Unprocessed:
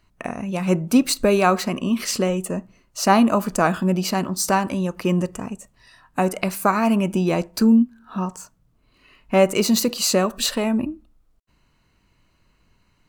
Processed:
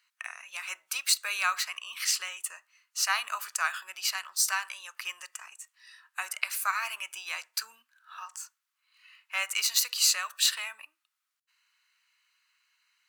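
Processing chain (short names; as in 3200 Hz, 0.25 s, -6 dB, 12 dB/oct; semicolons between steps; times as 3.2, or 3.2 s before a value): HPF 1400 Hz 24 dB/oct; gain -1.5 dB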